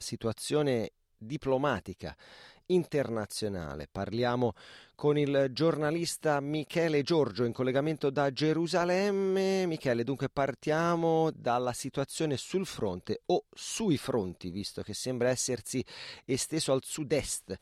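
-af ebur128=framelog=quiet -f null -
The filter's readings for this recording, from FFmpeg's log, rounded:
Integrated loudness:
  I:         -30.9 LUFS
  Threshold: -41.2 LUFS
Loudness range:
  LRA:         4.0 LU
  Threshold: -51.0 LUFS
  LRA low:   -33.3 LUFS
  LRA high:  -29.3 LUFS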